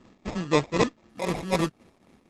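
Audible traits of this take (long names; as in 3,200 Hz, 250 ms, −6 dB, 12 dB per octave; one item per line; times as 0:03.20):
tremolo triangle 3.9 Hz, depth 70%
aliases and images of a low sample rate 1,500 Hz, jitter 0%
Opus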